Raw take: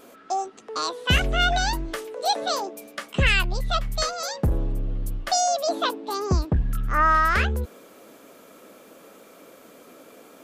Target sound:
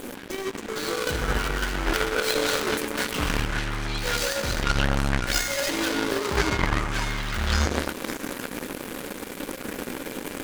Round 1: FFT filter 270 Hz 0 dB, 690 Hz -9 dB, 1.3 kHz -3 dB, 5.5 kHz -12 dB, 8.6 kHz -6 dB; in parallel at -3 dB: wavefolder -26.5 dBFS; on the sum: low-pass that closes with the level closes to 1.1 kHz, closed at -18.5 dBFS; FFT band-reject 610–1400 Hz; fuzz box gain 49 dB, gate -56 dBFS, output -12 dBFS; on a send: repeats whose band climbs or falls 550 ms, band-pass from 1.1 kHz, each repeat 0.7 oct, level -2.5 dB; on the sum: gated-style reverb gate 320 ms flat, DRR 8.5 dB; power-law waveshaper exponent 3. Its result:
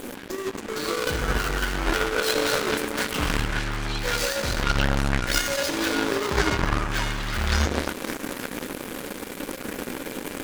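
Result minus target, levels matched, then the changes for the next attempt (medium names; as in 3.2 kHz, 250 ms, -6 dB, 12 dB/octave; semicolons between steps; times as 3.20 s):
wavefolder: distortion -28 dB
change: wavefolder -33.5 dBFS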